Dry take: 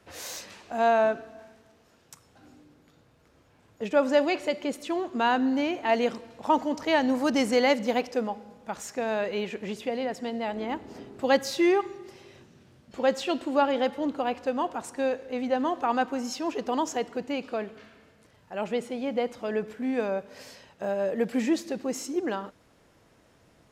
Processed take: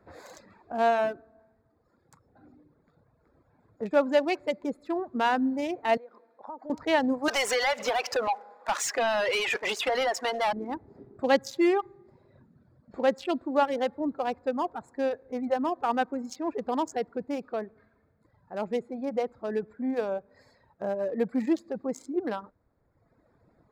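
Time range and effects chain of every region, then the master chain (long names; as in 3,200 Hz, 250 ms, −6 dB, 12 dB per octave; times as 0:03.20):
0:05.97–0:06.70: band-pass filter 420–5,400 Hz + downward compressor 4 to 1, threshold −37 dBFS
0:07.28–0:10.53: high-pass filter 660 Hz + downward compressor 4 to 1, threshold −33 dBFS + mid-hump overdrive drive 27 dB, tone 4,700 Hz, clips at −15 dBFS
whole clip: adaptive Wiener filter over 15 samples; reverb reduction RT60 1.2 s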